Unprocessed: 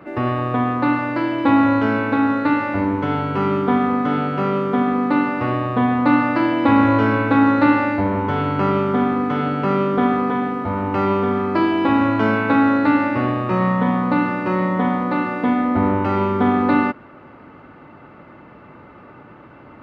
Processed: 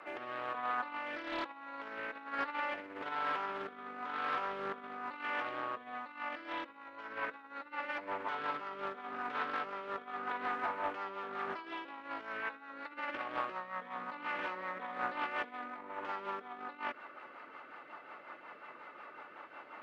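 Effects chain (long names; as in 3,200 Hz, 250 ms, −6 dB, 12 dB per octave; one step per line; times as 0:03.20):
compressor whose output falls as the input rises −23 dBFS, ratio −0.5
high-pass filter 820 Hz 12 dB per octave
brickwall limiter −20 dBFS, peak gain reduction 10 dB
rotating-speaker cabinet horn 1.1 Hz, later 5.5 Hz, at 0:06.08
highs frequency-modulated by the lows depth 0.32 ms
level −5 dB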